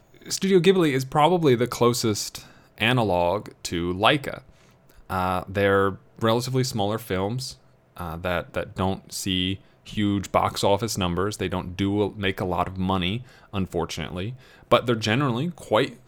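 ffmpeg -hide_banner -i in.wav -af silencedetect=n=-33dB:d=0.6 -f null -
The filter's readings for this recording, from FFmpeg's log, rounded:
silence_start: 4.38
silence_end: 5.10 | silence_duration: 0.71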